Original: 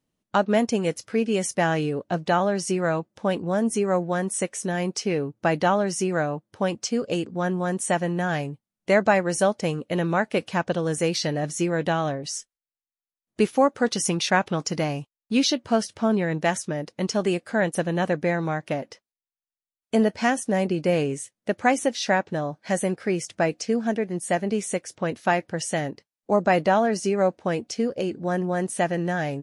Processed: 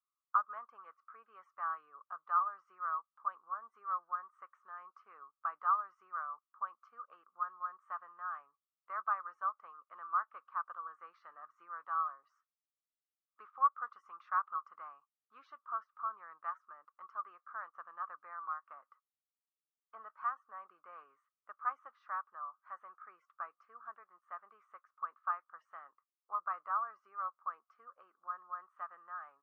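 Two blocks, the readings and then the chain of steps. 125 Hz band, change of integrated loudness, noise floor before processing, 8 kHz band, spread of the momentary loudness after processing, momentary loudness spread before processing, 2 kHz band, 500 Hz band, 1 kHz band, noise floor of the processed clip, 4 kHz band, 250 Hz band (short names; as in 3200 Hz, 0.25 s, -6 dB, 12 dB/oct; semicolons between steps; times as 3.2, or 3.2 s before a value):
under -40 dB, -15.0 dB, under -85 dBFS, under -40 dB, 21 LU, 7 LU, -20.0 dB, -38.0 dB, -9.5 dB, under -85 dBFS, under -40 dB, under -40 dB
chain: Butterworth band-pass 1200 Hz, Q 6; gain +1.5 dB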